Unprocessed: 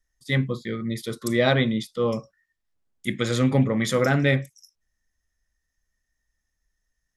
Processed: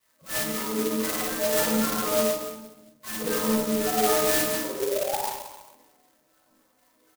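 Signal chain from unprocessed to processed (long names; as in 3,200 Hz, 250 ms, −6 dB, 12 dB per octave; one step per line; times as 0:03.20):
every partial snapped to a pitch grid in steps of 6 semitones
high-pass filter 190 Hz 24 dB per octave
notch filter 1,800 Hz, Q 15
reversed playback
downward compressor 5 to 1, threshold −31 dBFS, peak gain reduction 16.5 dB
reversed playback
sound drawn into the spectrogram rise, 0:04.64–0:05.27, 360–1,100 Hz −37 dBFS
sample-and-hold swept by an LFO 10×, swing 60% 2.5 Hz
auto-filter band-pass saw down 4 Hz 280–2,600 Hz
on a send: multi-tap delay 50/54/104/107/190 ms −3.5/−6.5/−11/−11/−19.5 dB
on the sum: rectangular room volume 680 cubic metres, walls mixed, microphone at 6.2 metres
converter with an unsteady clock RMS 0.12 ms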